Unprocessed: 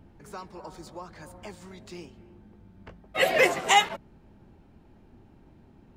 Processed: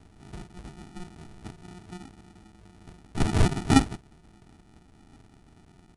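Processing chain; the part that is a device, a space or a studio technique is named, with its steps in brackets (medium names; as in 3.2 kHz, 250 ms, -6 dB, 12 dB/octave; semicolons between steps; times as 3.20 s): crushed at another speed (playback speed 2×; sample-and-hold 41×; playback speed 0.5×)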